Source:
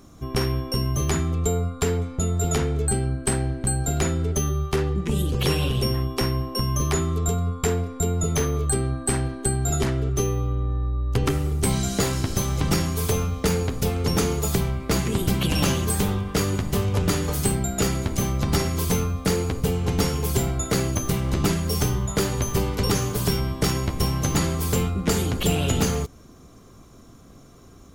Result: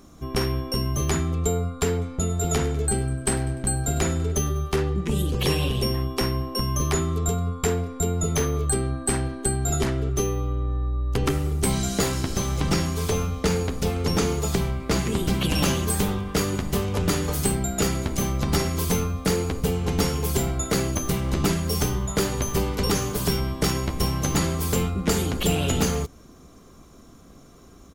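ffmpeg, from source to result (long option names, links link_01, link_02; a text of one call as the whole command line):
ffmpeg -i in.wav -filter_complex "[0:a]asplit=3[link_01][link_02][link_03];[link_01]afade=type=out:start_time=2.26:duration=0.02[link_04];[link_02]aecho=1:1:99|198|297|396|495:0.178|0.0871|0.0427|0.0209|0.0103,afade=type=in:start_time=2.26:duration=0.02,afade=type=out:start_time=4.74:duration=0.02[link_05];[link_03]afade=type=in:start_time=4.74:duration=0.02[link_06];[link_04][link_05][link_06]amix=inputs=3:normalize=0,asettb=1/sr,asplit=3[link_07][link_08][link_09];[link_07]atrim=end=5.414[link_10];[link_08]atrim=start=5.41:end=6,asetpts=PTS-STARTPTS,afade=type=in:duration=0.004:curve=qsin,afade=type=out:start_time=0.586:duration=0.004:curve=qsin,bandreject=frequency=1400:width=7.9[link_11];[link_09]atrim=start=5.996[link_12];[link_10][link_11]acrossfade=duration=0.004:curve1=hsin:curve2=qsin[link_13];[link_13][link_12]acrossfade=duration=0.004:curve1=qsin:curve2=hsin,asettb=1/sr,asplit=3[link_14][link_15][link_16];[link_14]atrim=end=12.234[link_17];[link_15]atrim=start=12.23:end=15.44,asetpts=PTS-STARTPTS,afade=type=in:duration=0.004:curve=qsin,afade=type=out:start_time=3.206:duration=0.004:curve=qsin,acrossover=split=8300[link_18][link_19];[link_19]acompressor=threshold=-41dB:ratio=4:attack=1:release=60[link_20];[link_18][link_20]amix=inputs=2:normalize=0[link_21];[link_16]atrim=start=15.436[link_22];[link_17][link_21]acrossfade=duration=0.004:curve1=hsin:curve2=qsin[link_23];[link_23][link_22]acrossfade=duration=0.004:curve1=qsin:curve2=hsin,equalizer=frequency=110:width_type=o:width=0.23:gain=-13" out.wav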